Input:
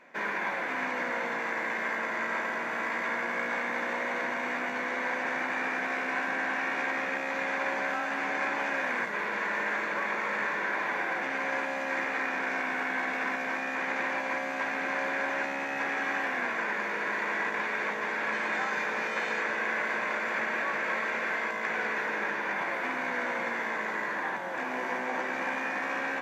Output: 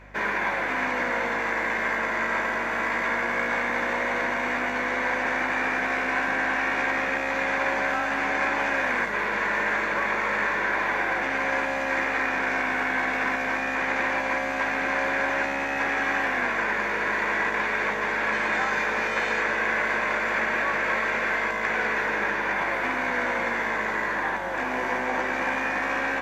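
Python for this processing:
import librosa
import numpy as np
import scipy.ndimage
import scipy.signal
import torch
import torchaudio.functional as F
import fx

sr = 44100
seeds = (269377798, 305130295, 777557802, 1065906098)

y = fx.add_hum(x, sr, base_hz=50, snr_db=24)
y = F.gain(torch.from_numpy(y), 5.5).numpy()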